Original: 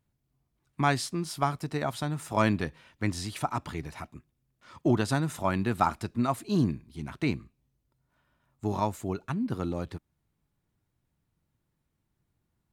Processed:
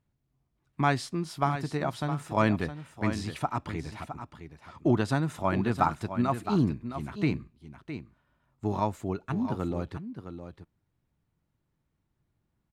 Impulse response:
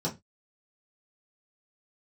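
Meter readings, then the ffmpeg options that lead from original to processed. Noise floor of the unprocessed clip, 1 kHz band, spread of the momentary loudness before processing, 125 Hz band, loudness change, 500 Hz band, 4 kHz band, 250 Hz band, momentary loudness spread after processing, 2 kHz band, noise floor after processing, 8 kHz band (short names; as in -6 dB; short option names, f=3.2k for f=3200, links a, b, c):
-79 dBFS, +0.5 dB, 12 LU, +1.0 dB, 0.0 dB, +0.5 dB, -3.0 dB, +1.0 dB, 15 LU, -0.5 dB, -78 dBFS, -6.0 dB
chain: -filter_complex "[0:a]aemphasis=mode=reproduction:type=cd,asplit=2[a][b];[b]aecho=0:1:663:0.316[c];[a][c]amix=inputs=2:normalize=0"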